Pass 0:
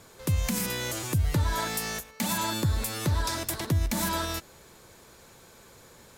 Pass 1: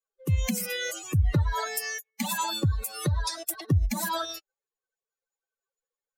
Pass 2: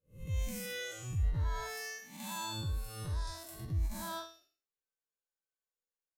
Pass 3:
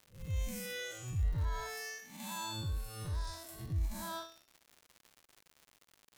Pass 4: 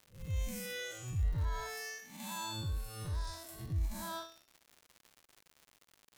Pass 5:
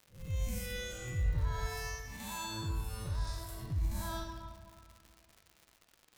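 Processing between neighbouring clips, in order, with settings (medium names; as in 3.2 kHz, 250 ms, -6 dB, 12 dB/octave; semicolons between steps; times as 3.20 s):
expander on every frequency bin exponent 3; trim +6 dB
spectral blur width 196 ms; bass shelf 68 Hz +6.5 dB; endings held to a fixed fall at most 130 dB/s; trim -6.5 dB
crackle 160 per s -44 dBFS; trim -1 dB
no audible change
reverberation RT60 2.3 s, pre-delay 41 ms, DRR 5 dB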